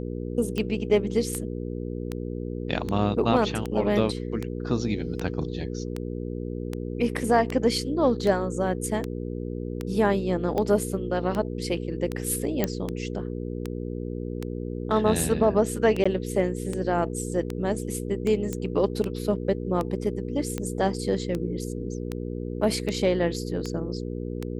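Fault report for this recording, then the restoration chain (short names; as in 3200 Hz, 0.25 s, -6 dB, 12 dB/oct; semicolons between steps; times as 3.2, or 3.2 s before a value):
hum 60 Hz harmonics 8 -32 dBFS
tick 78 rpm -16 dBFS
12.64 pop -9 dBFS
16.04–16.05 gap 15 ms
18.53 pop -16 dBFS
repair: de-click; de-hum 60 Hz, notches 8; interpolate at 16.04, 15 ms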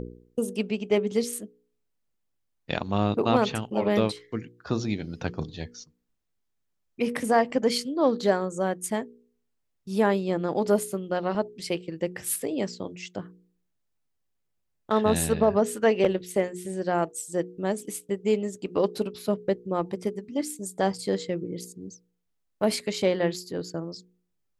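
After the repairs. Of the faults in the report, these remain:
none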